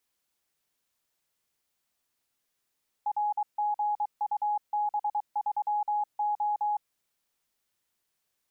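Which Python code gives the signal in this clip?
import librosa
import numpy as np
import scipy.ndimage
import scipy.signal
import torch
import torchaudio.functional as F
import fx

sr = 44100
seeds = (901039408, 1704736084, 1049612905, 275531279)

y = fx.morse(sr, text='RGUB3O', wpm=23, hz=835.0, level_db=-25.0)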